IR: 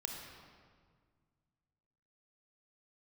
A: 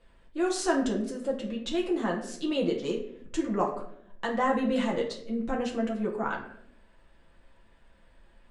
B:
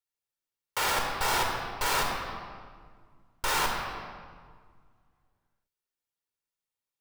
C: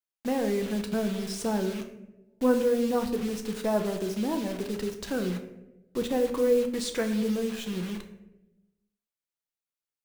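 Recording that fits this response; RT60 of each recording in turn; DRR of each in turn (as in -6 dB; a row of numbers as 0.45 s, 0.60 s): B; 0.70 s, 1.8 s, 1.0 s; -2.0 dB, 1.5 dB, 5.0 dB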